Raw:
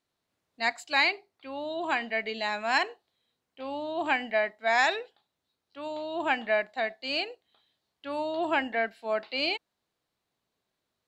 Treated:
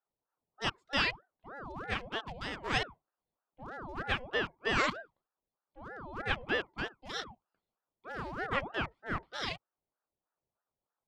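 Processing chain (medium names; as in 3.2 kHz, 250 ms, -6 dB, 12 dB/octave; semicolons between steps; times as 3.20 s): local Wiener filter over 41 samples; ring modulator with a swept carrier 690 Hz, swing 65%, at 3.2 Hz; trim -2 dB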